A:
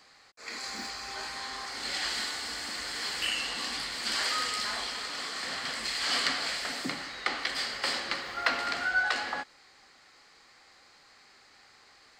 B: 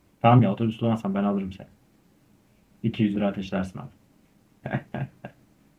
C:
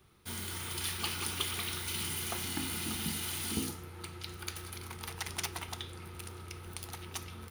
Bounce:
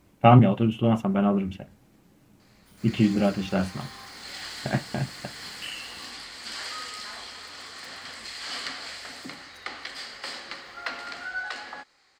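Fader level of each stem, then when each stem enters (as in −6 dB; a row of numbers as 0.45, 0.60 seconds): −5.5, +2.0, −18.5 decibels; 2.40, 0.00, 2.40 seconds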